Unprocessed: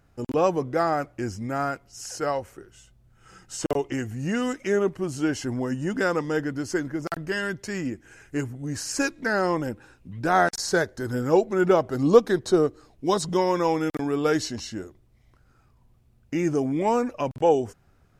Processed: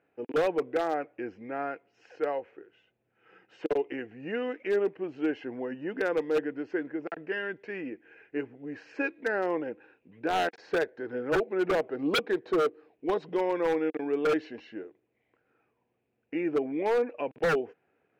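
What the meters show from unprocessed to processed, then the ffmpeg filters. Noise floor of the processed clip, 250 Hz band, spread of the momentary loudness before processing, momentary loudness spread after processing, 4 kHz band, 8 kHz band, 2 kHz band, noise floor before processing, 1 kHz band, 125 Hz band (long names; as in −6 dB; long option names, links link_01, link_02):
−77 dBFS, −7.0 dB, 11 LU, 12 LU, −5.0 dB, below −15 dB, −4.5 dB, −61 dBFS, −7.5 dB, −16.0 dB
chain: -af "highpass=280,equalizer=frequency=310:width_type=q:width=4:gain=5,equalizer=frequency=460:width_type=q:width=4:gain=10,equalizer=frequency=760:width_type=q:width=4:gain=3,equalizer=frequency=1200:width_type=q:width=4:gain=-5,equalizer=frequency=1700:width_type=q:width=4:gain=4,equalizer=frequency=2500:width_type=q:width=4:gain=8,lowpass=frequency=2900:width=0.5412,lowpass=frequency=2900:width=1.3066,aeval=exprs='0.266*(abs(mod(val(0)/0.266+3,4)-2)-1)':channel_layout=same,volume=-8dB"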